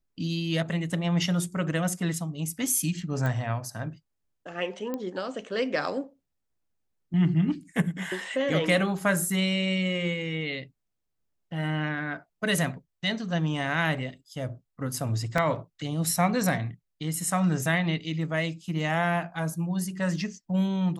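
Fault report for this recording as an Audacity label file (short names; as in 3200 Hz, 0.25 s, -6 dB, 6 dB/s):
3.260000	3.260000	pop -18 dBFS
4.940000	4.940000	pop -19 dBFS
15.380000	15.380000	gap 2.4 ms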